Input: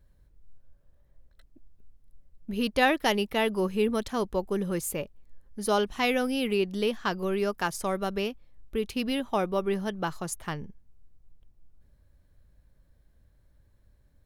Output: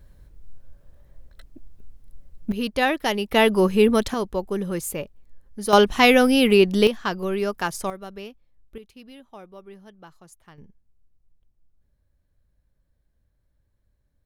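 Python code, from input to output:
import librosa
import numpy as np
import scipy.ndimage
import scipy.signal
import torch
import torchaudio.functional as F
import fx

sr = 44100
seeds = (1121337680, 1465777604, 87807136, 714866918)

y = fx.gain(x, sr, db=fx.steps((0.0, 11.0), (2.52, 1.5), (3.32, 9.0), (4.14, 2.5), (5.73, 11.0), (6.87, 3.0), (7.9, -7.5), (8.78, -16.0), (10.58, -7.5)))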